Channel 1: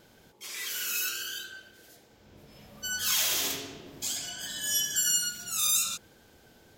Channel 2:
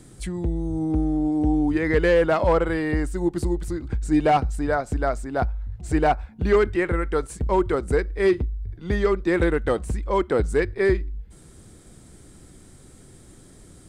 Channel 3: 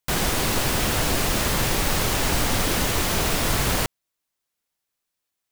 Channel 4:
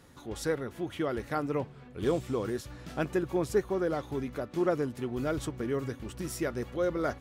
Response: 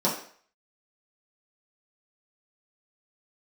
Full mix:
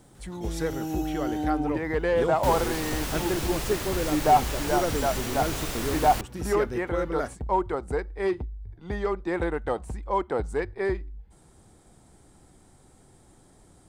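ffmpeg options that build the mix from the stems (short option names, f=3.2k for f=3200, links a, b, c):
-filter_complex "[0:a]acompressor=threshold=-35dB:ratio=6,acrusher=bits=9:mix=0:aa=0.000001,volume=-13.5dB,asplit=2[a][b];[b]volume=-9.5dB[c];[1:a]equalizer=f=830:t=o:w=0.77:g=11.5,volume=-8.5dB[d];[2:a]adelay=2350,volume=-10dB[e];[3:a]adelay=150,volume=0dB[f];[4:a]atrim=start_sample=2205[g];[c][g]afir=irnorm=-1:irlink=0[h];[a][d][e][f][h]amix=inputs=5:normalize=0"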